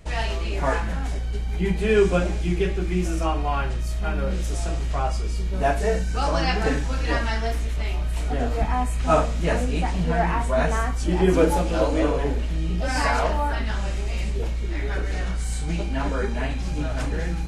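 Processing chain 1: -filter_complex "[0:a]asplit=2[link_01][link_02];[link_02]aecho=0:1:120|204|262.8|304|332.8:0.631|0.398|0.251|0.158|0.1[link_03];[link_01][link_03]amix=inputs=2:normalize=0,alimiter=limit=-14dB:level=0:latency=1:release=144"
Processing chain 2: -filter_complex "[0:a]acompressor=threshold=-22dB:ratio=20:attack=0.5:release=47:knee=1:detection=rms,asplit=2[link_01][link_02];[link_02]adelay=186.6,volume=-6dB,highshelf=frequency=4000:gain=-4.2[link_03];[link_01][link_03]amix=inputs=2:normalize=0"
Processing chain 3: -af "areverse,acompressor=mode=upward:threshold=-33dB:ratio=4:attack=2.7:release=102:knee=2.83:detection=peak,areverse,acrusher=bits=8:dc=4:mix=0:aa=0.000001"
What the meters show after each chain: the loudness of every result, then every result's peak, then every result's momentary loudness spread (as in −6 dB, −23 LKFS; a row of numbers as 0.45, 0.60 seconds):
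−24.0, −27.0, −24.5 LKFS; −14.0, −16.5, −7.0 dBFS; 1, 1, 7 LU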